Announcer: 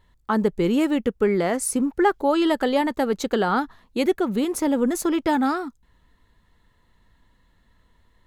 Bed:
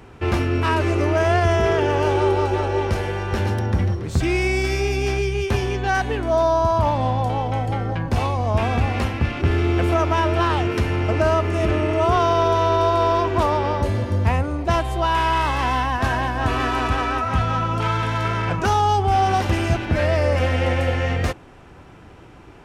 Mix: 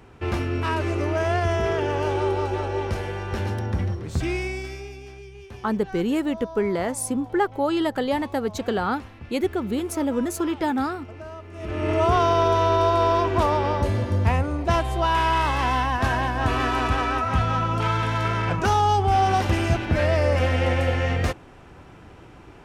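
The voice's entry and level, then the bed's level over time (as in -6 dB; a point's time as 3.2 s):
5.35 s, -3.0 dB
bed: 4.29 s -5 dB
5.09 s -20 dB
11.49 s -20 dB
11.9 s -1.5 dB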